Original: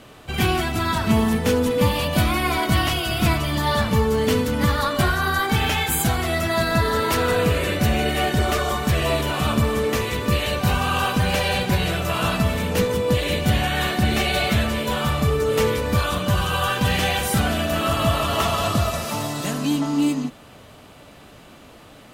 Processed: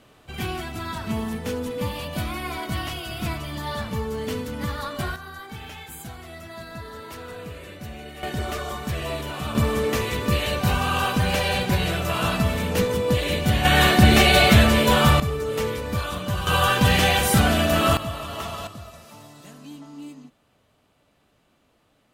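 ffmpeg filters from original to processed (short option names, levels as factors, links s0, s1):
-af "asetnsamples=n=441:p=0,asendcmd='5.16 volume volume -17.5dB;8.23 volume volume -8dB;9.55 volume volume -1.5dB;13.65 volume volume 6dB;15.2 volume volume -6dB;16.47 volume volume 2.5dB;17.97 volume volume -10.5dB;18.67 volume volume -19dB',volume=0.355"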